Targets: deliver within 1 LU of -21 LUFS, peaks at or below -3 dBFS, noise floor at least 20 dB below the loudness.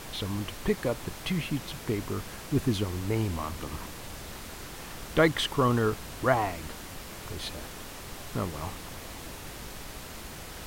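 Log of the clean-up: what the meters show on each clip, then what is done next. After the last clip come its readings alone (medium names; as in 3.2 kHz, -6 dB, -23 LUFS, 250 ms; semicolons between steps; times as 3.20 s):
noise floor -43 dBFS; noise floor target -52 dBFS; loudness -32.0 LUFS; peak level -9.5 dBFS; loudness target -21.0 LUFS
-> noise print and reduce 9 dB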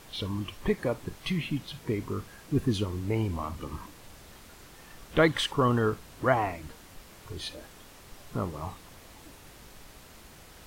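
noise floor -52 dBFS; loudness -30.5 LUFS; peak level -9.5 dBFS; loudness target -21.0 LUFS
-> trim +9.5 dB; peak limiter -3 dBFS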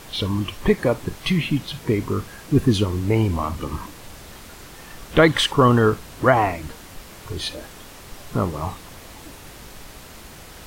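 loudness -21.5 LUFS; peak level -3.0 dBFS; noise floor -42 dBFS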